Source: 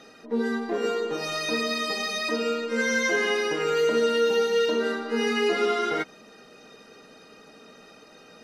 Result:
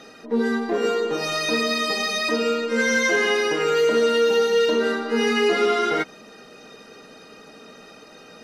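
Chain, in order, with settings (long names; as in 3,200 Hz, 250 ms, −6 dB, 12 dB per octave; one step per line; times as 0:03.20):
soft clipping −14.5 dBFS, distortion −24 dB
0:02.97–0:04.53: low-shelf EQ 66 Hz −11 dB
level +5 dB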